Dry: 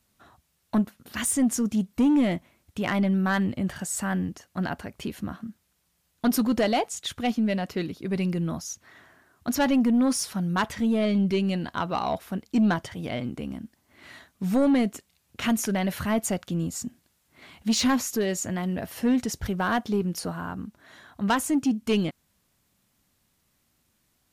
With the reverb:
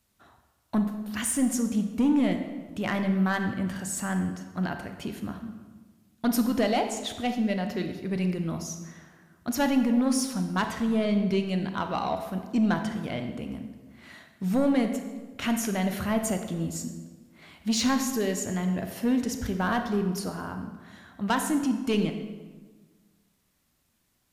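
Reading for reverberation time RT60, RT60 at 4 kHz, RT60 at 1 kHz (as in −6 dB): 1.4 s, 1.0 s, 1.3 s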